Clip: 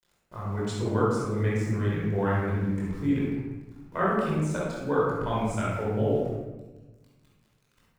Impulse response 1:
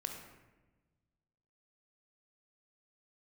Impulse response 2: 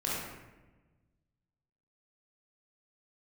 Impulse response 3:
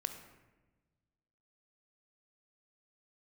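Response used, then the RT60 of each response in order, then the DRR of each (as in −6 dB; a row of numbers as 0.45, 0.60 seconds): 2; 1.2, 1.2, 1.2 seconds; 2.5, −7.0, 6.5 decibels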